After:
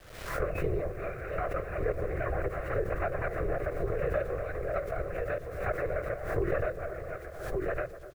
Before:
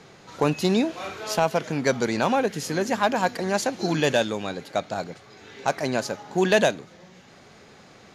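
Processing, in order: comb filter that takes the minimum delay 5.1 ms; gate -44 dBFS, range -10 dB; low-pass 2.5 kHz 12 dB/octave; delay 1151 ms -9 dB; in parallel at -7 dB: saturation -25.5 dBFS, distortion -8 dB; on the sum: dynamic bell 440 Hz, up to +7 dB, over -36 dBFS, Q 1.3; LPC vocoder at 8 kHz whisper; static phaser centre 900 Hz, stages 6; feedback echo behind a low-pass 248 ms, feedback 45%, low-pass 1.4 kHz, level -17 dB; compression 3:1, threshold -26 dBFS, peak gain reduction 10.5 dB; word length cut 10-bit, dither none; swell ahead of each attack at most 65 dB/s; trim -3.5 dB

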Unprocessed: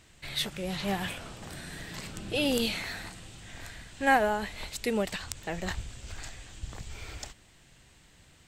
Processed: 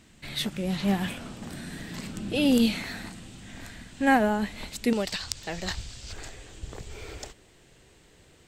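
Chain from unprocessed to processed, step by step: peaking EQ 230 Hz +11 dB 0.9 oct, from 4.93 s 4.8 kHz, from 6.13 s 420 Hz

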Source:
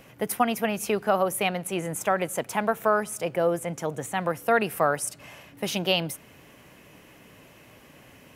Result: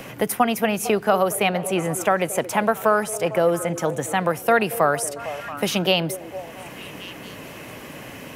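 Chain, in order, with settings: repeats whose band climbs or falls 226 ms, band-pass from 400 Hz, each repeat 0.7 oct, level -12 dB; three bands compressed up and down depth 40%; trim +5 dB

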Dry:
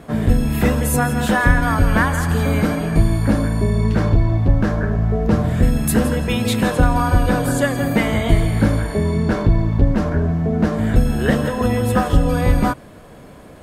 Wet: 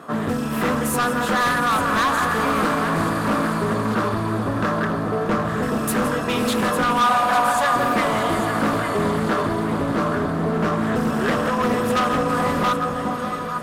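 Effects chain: gain riding 0.5 s; high-pass 210 Hz 12 dB/octave; peaking EQ 1.2 kHz +14 dB 0.48 oct; band-stop 2.2 kHz, Q 12; echo whose repeats swap between lows and highs 425 ms, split 970 Hz, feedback 65%, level -6 dB; hard clipper -15 dBFS, distortion -10 dB; 7.01–7.76 s: resonant low shelf 530 Hz -10.5 dB, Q 3; echo that smears into a reverb 626 ms, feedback 59%, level -10.5 dB; loudspeaker Doppler distortion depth 0.18 ms; trim -1.5 dB

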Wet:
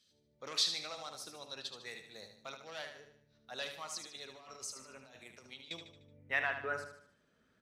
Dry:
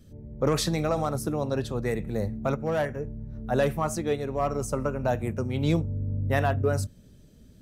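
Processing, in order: 3.96–5.71 s: compressor with a negative ratio -30 dBFS, ratio -0.5; band-pass sweep 4.1 kHz -> 1.4 kHz, 5.59–6.95 s; on a send: feedback delay 75 ms, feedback 45%, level -8 dB; on the sum: trim +2.5 dB

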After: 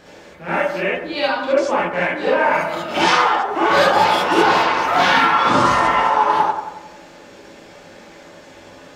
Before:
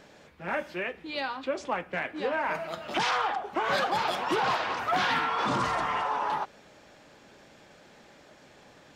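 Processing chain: on a send: bucket-brigade echo 91 ms, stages 1024, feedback 54%, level -8 dB; on the sum: gated-style reverb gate 90 ms rising, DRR -6 dB; trim +5 dB

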